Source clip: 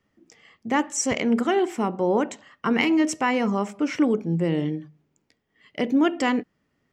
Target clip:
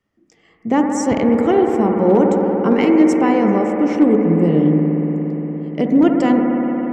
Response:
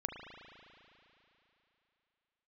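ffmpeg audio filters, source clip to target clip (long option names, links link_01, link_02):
-filter_complex "[0:a]acrossover=split=780[link_01][link_02];[link_01]dynaudnorm=framelen=320:gausssize=3:maxgain=14dB[link_03];[link_03][link_02]amix=inputs=2:normalize=0,asoftclip=type=hard:threshold=-3dB[link_04];[1:a]atrim=start_sample=2205,asetrate=27783,aresample=44100[link_05];[link_04][link_05]afir=irnorm=-1:irlink=0,volume=-4dB"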